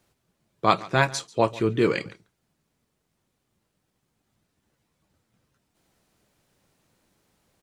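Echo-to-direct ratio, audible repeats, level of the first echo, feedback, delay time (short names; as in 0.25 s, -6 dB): -20.5 dB, 1, -20.5 dB, no steady repeat, 0.141 s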